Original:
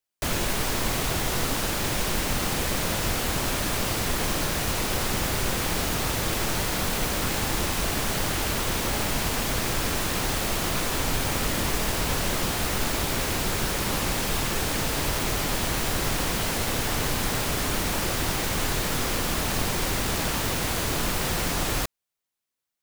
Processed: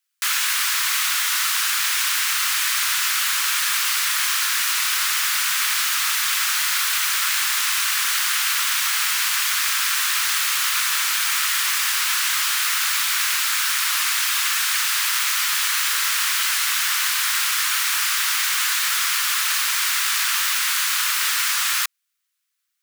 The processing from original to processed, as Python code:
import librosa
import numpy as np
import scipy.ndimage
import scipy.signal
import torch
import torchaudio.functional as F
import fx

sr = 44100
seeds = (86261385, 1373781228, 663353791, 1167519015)

y = scipy.signal.sosfilt(scipy.signal.butter(6, 1200.0, 'highpass', fs=sr, output='sos'), x)
y = y * 10.0 ** (9.0 / 20.0)